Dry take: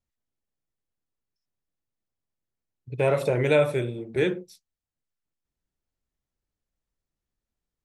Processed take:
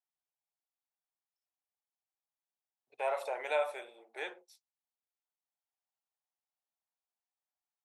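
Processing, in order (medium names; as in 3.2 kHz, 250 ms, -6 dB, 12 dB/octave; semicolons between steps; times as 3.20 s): ladder high-pass 690 Hz, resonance 60%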